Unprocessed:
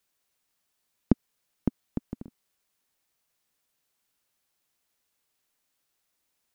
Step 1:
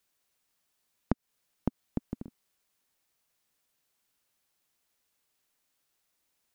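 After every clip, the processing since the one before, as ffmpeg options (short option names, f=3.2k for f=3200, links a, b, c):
-af "acompressor=threshold=-24dB:ratio=6"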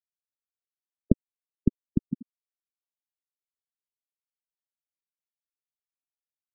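-af "afftfilt=real='re*gte(hypot(re,im),0.126)':imag='im*gte(hypot(re,im),0.126)':win_size=1024:overlap=0.75,volume=9dB"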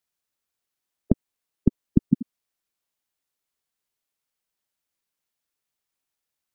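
-af "alimiter=level_in=12.5dB:limit=-1dB:release=50:level=0:latency=1,volume=-1dB"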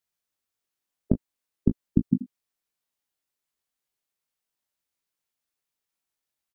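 -af "aecho=1:1:20|36:0.473|0.15,volume=-3dB"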